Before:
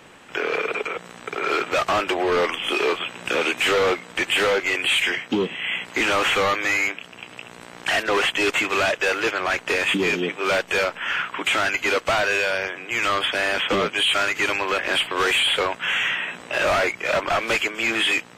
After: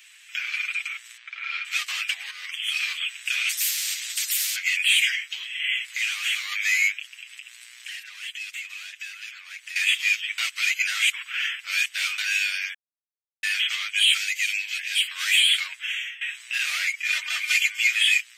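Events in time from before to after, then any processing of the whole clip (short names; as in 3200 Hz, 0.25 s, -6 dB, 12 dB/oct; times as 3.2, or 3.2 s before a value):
1.17–1.65 air absorption 220 m
2.31–2.81 fade in, from -12 dB
3.49–4.56 spectral compressor 10:1
5.92–6.52 compressor 3:1, threshold -23 dBFS
7.14–9.76 compressor 4:1, threshold -35 dBFS
10.38–12.18 reverse
12.74–13.43 mute
14.17–15.03 fixed phaser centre 300 Hz, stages 6
15.56–16.21 fade out, to -19.5 dB
17.1–17.87 comb 3.3 ms, depth 73%
whole clip: Chebyshev high-pass 2100 Hz, order 3; tilt +2 dB/oct; comb 7.4 ms; gain -2.5 dB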